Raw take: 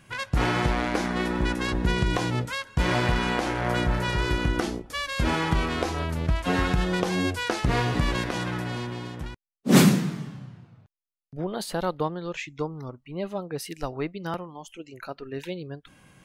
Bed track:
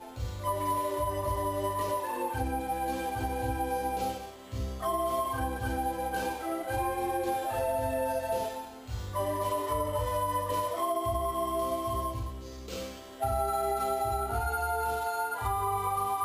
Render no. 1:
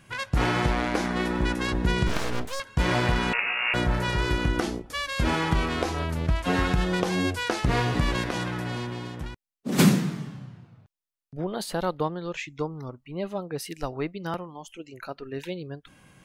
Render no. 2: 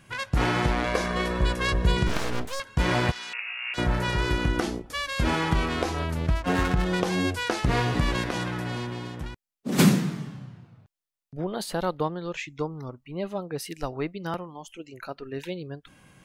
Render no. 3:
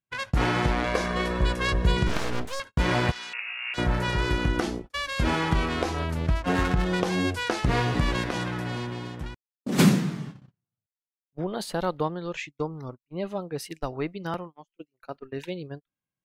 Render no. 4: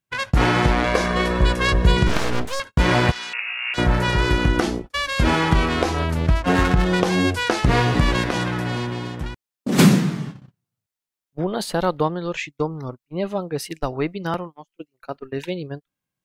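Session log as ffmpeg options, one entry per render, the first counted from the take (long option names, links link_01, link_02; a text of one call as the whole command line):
ffmpeg -i in.wav -filter_complex "[0:a]asettb=1/sr,asplit=3[link_01][link_02][link_03];[link_01]atrim=end=2.074[link_04];[link_02]atrim=start=2.07:end=2.6,asetpts=PTS-STARTPTS,afade=type=in:duration=0.004:curve=qsin,afade=type=out:start_time=0.526:duration=0.004:curve=qsin,aeval=exprs='abs(val(0))':channel_layout=same[link_05];[link_03]atrim=start=2.596[link_06];[link_04][link_05]acrossfade=duration=0.004:curve1=hsin:curve2=qsin[link_07];[link_07][link_06]acrossfade=duration=0.004:curve1=qsin:curve2=hsin,asettb=1/sr,asplit=3[link_08][link_09][link_10];[link_08]atrim=end=3.334[link_11];[link_09]atrim=start=3.33:end=3.74,asetpts=PTS-STARTPTS,afade=type=in:duration=0.004:curve=qsin,afade=type=out:start_time=0.406:duration=0.004:curve=qsin,lowpass=frequency=2500:width_type=q:width=0.5098,lowpass=frequency=2500:width_type=q:width=0.6013,lowpass=frequency=2500:width_type=q:width=0.9,lowpass=frequency=2500:width_type=q:width=2.563,afreqshift=-2900[link_12];[link_10]atrim=start=3.736[link_13];[link_11][link_12]acrossfade=duration=0.004:curve1=hsin:curve2=qsin[link_14];[link_14][link_13]acrossfade=duration=0.004:curve1=qsin:curve2=hsin,asplit=3[link_15][link_16][link_17];[link_15]afade=type=out:start_time=8.44:duration=0.02[link_18];[link_16]acompressor=threshold=-25dB:ratio=6:attack=3.2:release=140:knee=1:detection=peak,afade=type=in:start_time=8.44:duration=0.02,afade=type=out:start_time=9.78:duration=0.02[link_19];[link_17]afade=type=in:start_time=9.78:duration=0.02[link_20];[link_18][link_19][link_20]amix=inputs=3:normalize=0" out.wav
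ffmpeg -i in.wav -filter_complex "[0:a]asettb=1/sr,asplit=3[link_01][link_02][link_03];[link_01]atrim=end=0.844[link_04];[link_02]atrim=start=0.84:end=1.97,asetpts=PTS-STARTPTS,afade=type=in:duration=0.004:curve=qsin,afade=type=out:start_time=1.126:duration=0.004:curve=qsin,aecho=1:1:1.8:0.68,atrim=end_sample=49833[link_05];[link_03]atrim=start=1.966[link_06];[link_04][link_05]acrossfade=duration=0.004:curve1=hsin:curve2=qsin[link_07];[link_07][link_06]acrossfade=duration=0.004:curve1=qsin:curve2=hsin,asplit=3[link_08][link_09][link_10];[link_08]afade=type=out:start_time=3.1:duration=0.02[link_11];[link_09]bandpass=frequency=5600:width_type=q:width=0.96,afade=type=in:start_time=3.1:duration=0.02,afade=type=out:start_time=3.77:duration=0.02[link_12];[link_10]afade=type=in:start_time=3.77:duration=0.02[link_13];[link_11][link_12][link_13]amix=inputs=3:normalize=0,asplit=3[link_14][link_15][link_16];[link_14]afade=type=out:start_time=6.34:duration=0.02[link_17];[link_15]adynamicsmooth=sensitivity=5:basefreq=560,afade=type=in:start_time=6.34:duration=0.02,afade=type=out:start_time=6.84:duration=0.02[link_18];[link_16]afade=type=in:start_time=6.84:duration=0.02[link_19];[link_17][link_18][link_19]amix=inputs=3:normalize=0" out.wav
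ffmpeg -i in.wav -af "highshelf=frequency=9800:gain=-5,agate=range=-39dB:threshold=-37dB:ratio=16:detection=peak" out.wav
ffmpeg -i in.wav -af "volume=6.5dB,alimiter=limit=-3dB:level=0:latency=1" out.wav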